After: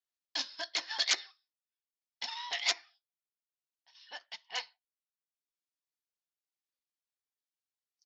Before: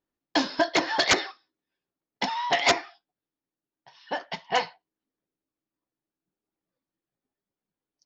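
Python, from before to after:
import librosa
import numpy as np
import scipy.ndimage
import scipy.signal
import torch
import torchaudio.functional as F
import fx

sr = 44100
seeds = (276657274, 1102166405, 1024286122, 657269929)

y = fx.transient(x, sr, attack_db=-6, sustain_db=-10)
y = fx.bandpass_q(y, sr, hz=5000.0, q=0.95)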